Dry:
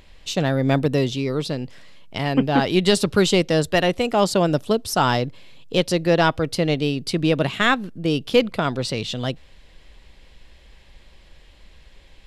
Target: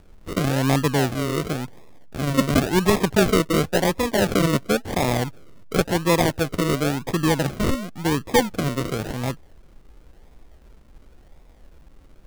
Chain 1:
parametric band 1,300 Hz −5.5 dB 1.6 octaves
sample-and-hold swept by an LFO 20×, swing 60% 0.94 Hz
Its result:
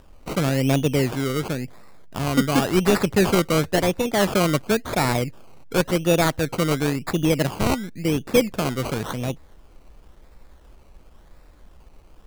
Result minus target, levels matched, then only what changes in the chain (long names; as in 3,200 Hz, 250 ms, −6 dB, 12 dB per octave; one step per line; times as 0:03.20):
sample-and-hold swept by an LFO: distortion −7 dB
change: sample-and-hold swept by an LFO 42×, swing 60% 0.94 Hz